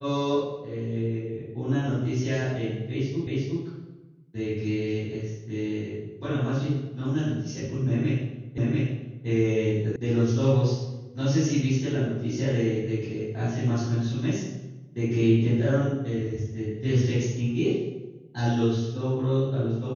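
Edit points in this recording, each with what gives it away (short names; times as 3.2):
3.27 repeat of the last 0.36 s
8.58 repeat of the last 0.69 s
9.96 sound cut off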